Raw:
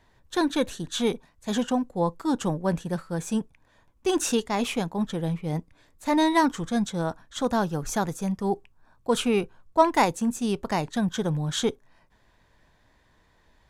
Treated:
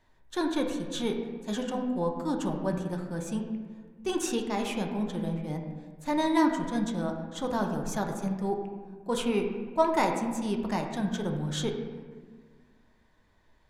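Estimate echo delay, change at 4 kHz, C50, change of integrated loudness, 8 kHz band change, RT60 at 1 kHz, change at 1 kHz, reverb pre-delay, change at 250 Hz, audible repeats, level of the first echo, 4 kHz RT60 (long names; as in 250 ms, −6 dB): no echo audible, −5.5 dB, 5.5 dB, −4.0 dB, −6.5 dB, 1.4 s, −5.0 dB, 3 ms, −3.0 dB, no echo audible, no echo audible, 0.95 s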